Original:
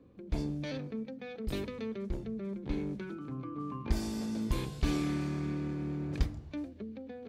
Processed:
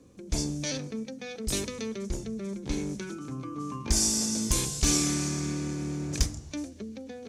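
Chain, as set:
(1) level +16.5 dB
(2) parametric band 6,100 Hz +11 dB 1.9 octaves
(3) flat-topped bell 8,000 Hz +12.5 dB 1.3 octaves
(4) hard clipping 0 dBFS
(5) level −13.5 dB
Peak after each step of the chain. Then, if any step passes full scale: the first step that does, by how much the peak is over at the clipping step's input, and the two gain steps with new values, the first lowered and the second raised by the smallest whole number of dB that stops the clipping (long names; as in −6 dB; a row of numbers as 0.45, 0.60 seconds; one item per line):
+1.0, +3.5, +6.5, 0.0, −13.5 dBFS
step 1, 6.5 dB
step 1 +9.5 dB, step 5 −6.5 dB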